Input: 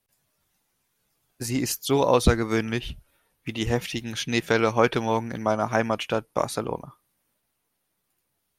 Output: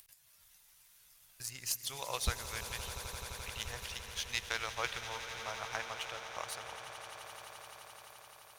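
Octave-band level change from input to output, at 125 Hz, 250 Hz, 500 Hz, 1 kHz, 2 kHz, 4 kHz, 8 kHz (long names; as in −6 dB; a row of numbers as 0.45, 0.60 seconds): −18.0, −30.5, −23.0, −14.5, −9.5, −6.5, −5.5 decibels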